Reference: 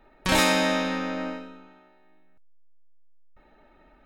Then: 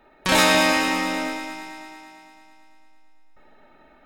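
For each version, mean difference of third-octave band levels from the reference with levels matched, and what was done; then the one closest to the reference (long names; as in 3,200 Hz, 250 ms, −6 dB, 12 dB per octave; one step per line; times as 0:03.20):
6.0 dB: low-shelf EQ 140 Hz −10 dB
echo machine with several playback heads 112 ms, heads first and second, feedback 67%, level −10 dB
level +4 dB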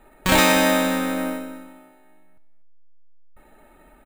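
3.5 dB: bad sample-rate conversion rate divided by 4×, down filtered, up hold
on a send: repeating echo 244 ms, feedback 15%, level −16 dB
on the sum: level +5 dB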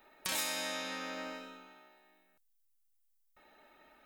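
8.0 dB: RIAA equalisation recording
downward compressor 2.5 to 1, threshold −38 dBFS, peak gain reduction 16.5 dB
level −3 dB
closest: second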